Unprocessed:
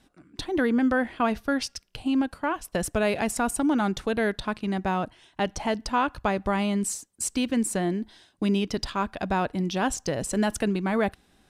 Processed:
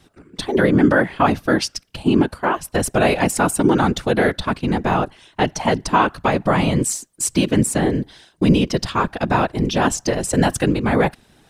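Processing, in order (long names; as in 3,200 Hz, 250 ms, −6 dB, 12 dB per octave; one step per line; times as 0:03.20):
random phases in short frames
level +8 dB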